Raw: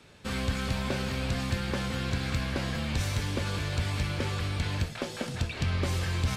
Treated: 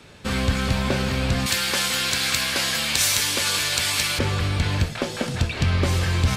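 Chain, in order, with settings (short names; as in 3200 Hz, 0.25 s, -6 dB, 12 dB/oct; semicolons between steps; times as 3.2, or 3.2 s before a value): 1.46–4.19 tilt +4.5 dB/oct; gain +8 dB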